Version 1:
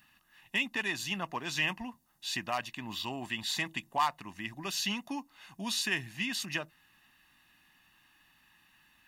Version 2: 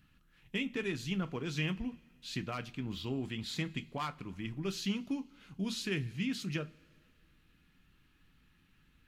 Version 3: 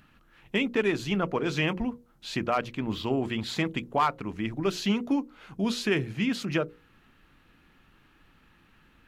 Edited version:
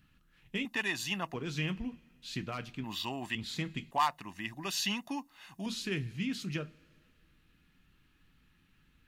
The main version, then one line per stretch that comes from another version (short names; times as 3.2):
2
0.65–1.34 from 1
2.84–3.35 from 1
3.91–5.66 from 1
not used: 3